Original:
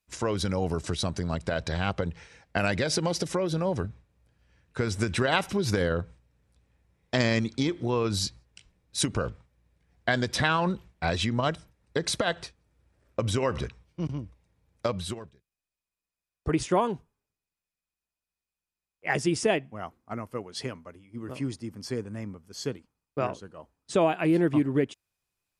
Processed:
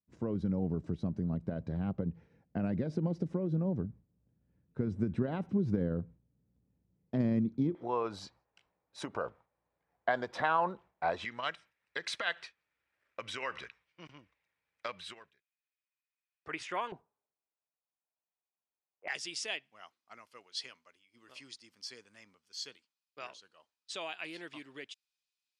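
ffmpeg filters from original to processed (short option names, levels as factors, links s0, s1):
-af "asetnsamples=n=441:p=0,asendcmd='7.75 bandpass f 840;11.25 bandpass f 2100;16.92 bandpass f 730;19.08 bandpass f 4000',bandpass=f=200:t=q:w=1.5:csg=0"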